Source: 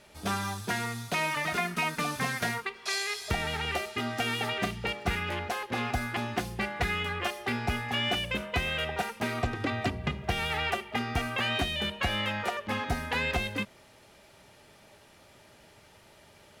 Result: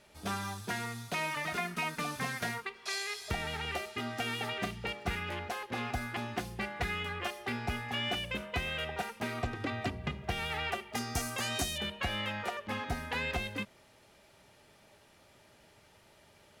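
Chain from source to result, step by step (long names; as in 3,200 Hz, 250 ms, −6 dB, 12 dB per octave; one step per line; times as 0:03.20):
0:10.93–0:11.78: high shelf with overshoot 4,300 Hz +13 dB, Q 1.5
level −5 dB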